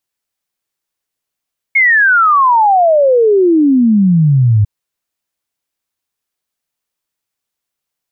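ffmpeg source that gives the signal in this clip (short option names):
-f lavfi -i "aevalsrc='0.501*clip(min(t,2.9-t)/0.01,0,1)*sin(2*PI*2200*2.9/log(100/2200)*(exp(log(100/2200)*t/2.9)-1))':d=2.9:s=44100"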